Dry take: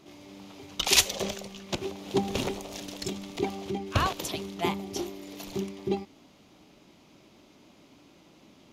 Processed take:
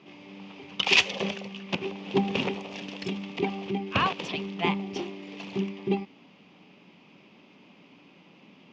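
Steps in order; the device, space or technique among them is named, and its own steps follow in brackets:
kitchen radio (loudspeaker in its box 180–4,300 Hz, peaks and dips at 180 Hz +6 dB, 330 Hz −6 dB, 640 Hz −6 dB, 1,400 Hz −4 dB, 2,600 Hz +6 dB, 4,000 Hz −8 dB)
level +3.5 dB

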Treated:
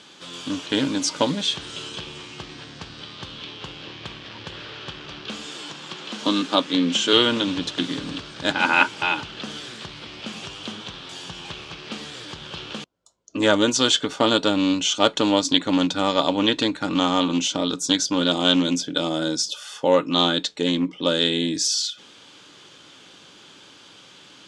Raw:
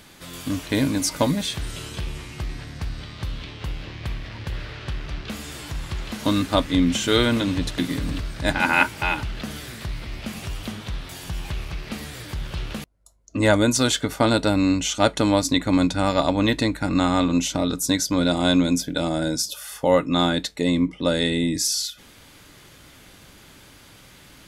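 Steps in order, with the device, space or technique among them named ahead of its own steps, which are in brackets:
0:05.46–0:07.13: high-pass filter 150 Hz 24 dB per octave
full-range speaker at full volume (highs frequency-modulated by the lows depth 0.16 ms; loudspeaker in its box 230–7,400 Hz, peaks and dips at 240 Hz −3 dB, 660 Hz −5 dB, 2,000 Hz −7 dB, 3,200 Hz +6 dB)
level +2 dB

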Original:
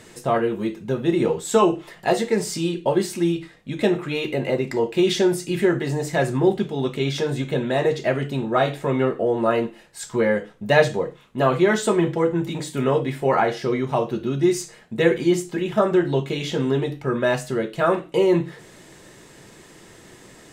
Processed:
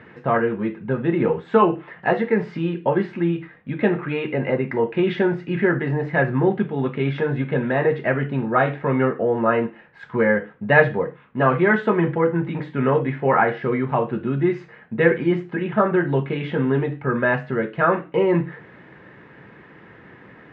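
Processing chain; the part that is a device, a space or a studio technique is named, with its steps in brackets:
bass cabinet (loudspeaker in its box 82–2,300 Hz, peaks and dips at 360 Hz −5 dB, 640 Hz −5 dB, 1,600 Hz +4 dB)
level +3 dB

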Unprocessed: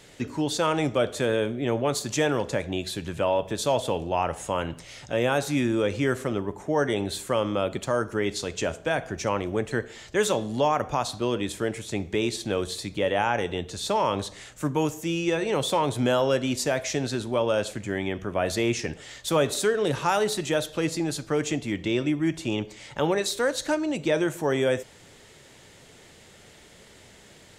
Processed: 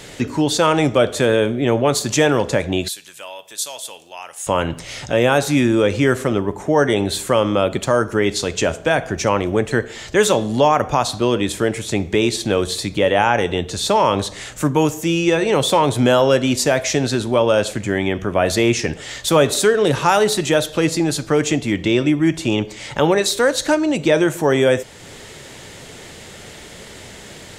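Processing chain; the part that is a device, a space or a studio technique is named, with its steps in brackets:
parallel compression (in parallel at −1 dB: downward compressor, threshold −42 dBFS, peak gain reduction 22.5 dB)
0:02.88–0:04.47: on the sum: first difference
level +8 dB

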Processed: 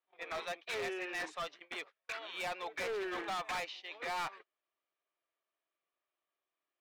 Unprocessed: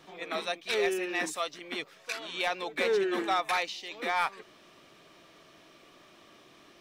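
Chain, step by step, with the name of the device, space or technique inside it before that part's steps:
walkie-talkie (band-pass filter 560–2,900 Hz; hard clipping −33 dBFS, distortion −7 dB; noise gate −47 dBFS, range −31 dB)
level −2 dB

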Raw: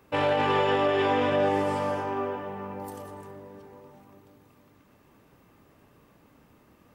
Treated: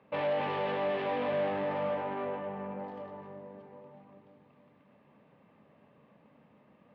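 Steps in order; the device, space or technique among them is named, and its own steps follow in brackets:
guitar amplifier (tube saturation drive 30 dB, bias 0.55; bass and treble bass −8 dB, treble −13 dB; loudspeaker in its box 86–4,000 Hz, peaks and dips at 150 Hz +8 dB, 210 Hz +9 dB, 350 Hz −6 dB, 570 Hz +5 dB, 1,400 Hz −6 dB)

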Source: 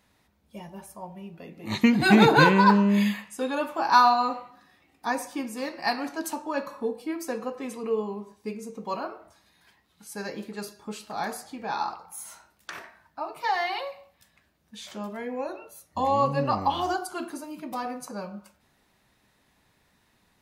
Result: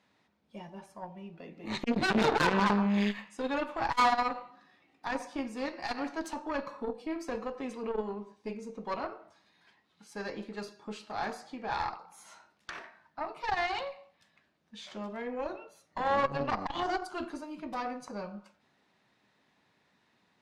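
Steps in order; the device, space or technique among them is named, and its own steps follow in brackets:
valve radio (band-pass filter 150–5,000 Hz; tube saturation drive 21 dB, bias 0.8; saturating transformer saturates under 390 Hz)
level +2 dB

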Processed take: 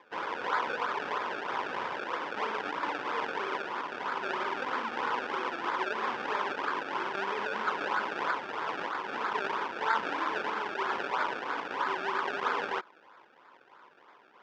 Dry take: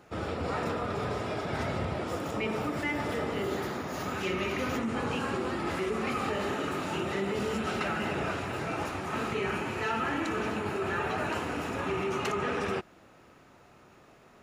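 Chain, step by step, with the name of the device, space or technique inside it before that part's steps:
circuit-bent sampling toy (sample-and-hold swept by an LFO 30×, swing 100% 3.1 Hz; loudspeaker in its box 560–4,300 Hz, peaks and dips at 660 Hz −7 dB, 1,000 Hz +10 dB, 1,500 Hz +5 dB, 4,100 Hz −8 dB)
level +1.5 dB

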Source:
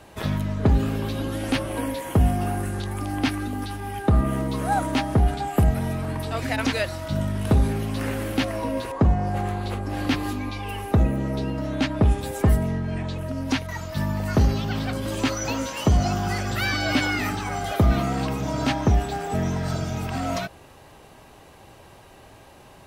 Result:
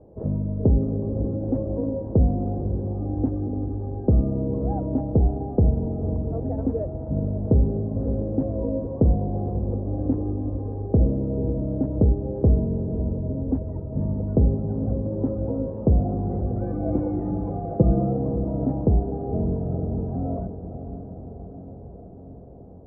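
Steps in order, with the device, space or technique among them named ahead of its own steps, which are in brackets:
under water (low-pass filter 580 Hz 24 dB per octave; parametric band 480 Hz +6.5 dB 0.26 octaves)
0:16.61–0:18.17: comb filter 5.9 ms, depth 81%
feedback delay with all-pass diffusion 522 ms, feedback 70%, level −11 dB

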